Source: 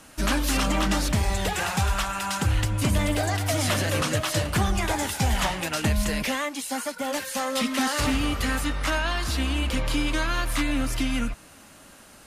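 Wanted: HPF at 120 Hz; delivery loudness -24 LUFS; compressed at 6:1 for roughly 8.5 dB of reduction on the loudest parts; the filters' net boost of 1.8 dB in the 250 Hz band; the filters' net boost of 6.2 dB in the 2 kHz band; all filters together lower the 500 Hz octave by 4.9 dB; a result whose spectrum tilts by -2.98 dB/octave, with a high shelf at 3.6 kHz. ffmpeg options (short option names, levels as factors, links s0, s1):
-af "highpass=120,equalizer=f=250:t=o:g=4.5,equalizer=f=500:t=o:g=-8,equalizer=f=2000:t=o:g=6,highshelf=f=3600:g=7.5,acompressor=threshold=0.0447:ratio=6,volume=1.78"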